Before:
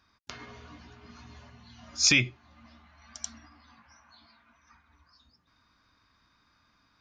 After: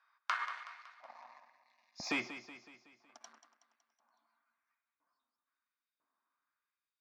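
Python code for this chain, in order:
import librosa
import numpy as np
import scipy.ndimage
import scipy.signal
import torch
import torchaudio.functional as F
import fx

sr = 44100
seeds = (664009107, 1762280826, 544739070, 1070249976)

y = fx.leveller(x, sr, passes=3)
y = fx.filter_lfo_highpass(y, sr, shape='saw_up', hz=1.0, low_hz=640.0, high_hz=3400.0, q=1.5)
y = fx.fixed_phaser(y, sr, hz=2100.0, stages=8, at=(0.63, 2.11))
y = fx.filter_sweep_bandpass(y, sr, from_hz=1500.0, to_hz=240.0, start_s=0.13, end_s=1.92, q=1.4)
y = fx.echo_feedback(y, sr, ms=186, feedback_pct=52, wet_db=-12.5)
y = y * librosa.db_to_amplitude(2.5)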